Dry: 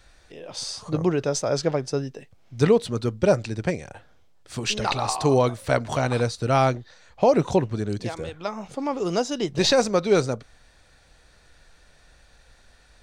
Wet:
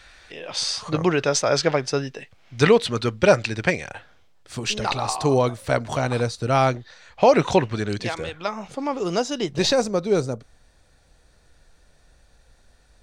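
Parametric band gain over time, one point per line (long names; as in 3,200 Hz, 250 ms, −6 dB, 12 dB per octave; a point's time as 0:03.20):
parametric band 2,300 Hz 2.8 octaves
0:03.90 +11.5 dB
0:04.59 +0.5 dB
0:06.45 +0.5 dB
0:07.43 +11.5 dB
0:07.94 +11.5 dB
0:08.77 +3 dB
0:09.51 +3 dB
0:09.91 −6.5 dB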